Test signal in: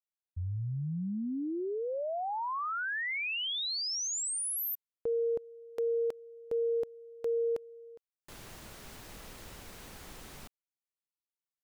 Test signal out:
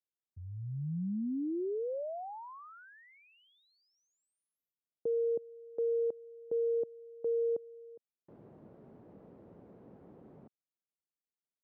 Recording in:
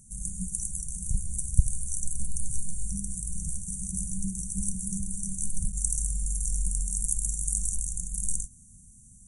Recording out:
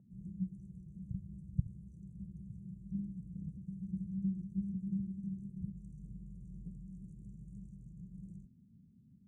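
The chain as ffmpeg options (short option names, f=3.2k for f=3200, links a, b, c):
-af "asuperpass=centerf=280:order=4:qfactor=0.63"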